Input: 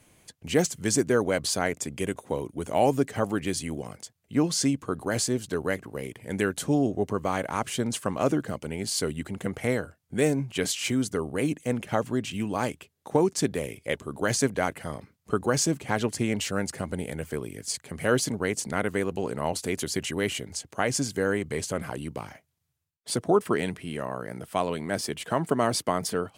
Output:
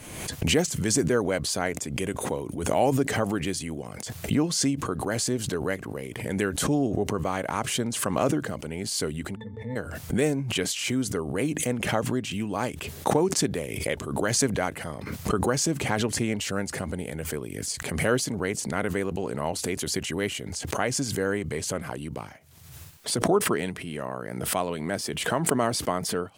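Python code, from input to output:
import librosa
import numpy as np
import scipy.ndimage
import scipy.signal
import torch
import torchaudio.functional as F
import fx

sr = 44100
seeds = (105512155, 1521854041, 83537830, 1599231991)

y = fx.octave_resonator(x, sr, note='A', decay_s=0.16, at=(9.35, 9.75), fade=0.02)
y = fx.pre_swell(y, sr, db_per_s=46.0)
y = y * 10.0 ** (-1.0 / 20.0)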